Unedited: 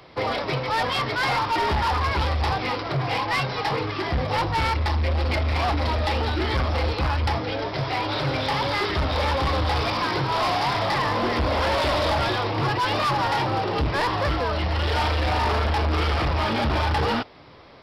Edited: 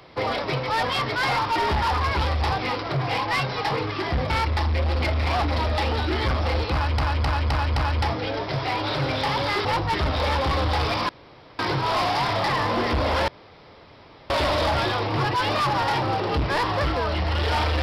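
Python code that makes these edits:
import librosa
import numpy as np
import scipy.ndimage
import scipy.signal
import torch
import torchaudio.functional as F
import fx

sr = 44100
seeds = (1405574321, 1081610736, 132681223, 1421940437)

y = fx.edit(x, sr, fx.move(start_s=4.3, length_s=0.29, to_s=8.9),
    fx.repeat(start_s=7.02, length_s=0.26, count=5),
    fx.insert_room_tone(at_s=10.05, length_s=0.5),
    fx.insert_room_tone(at_s=11.74, length_s=1.02), tone=tone)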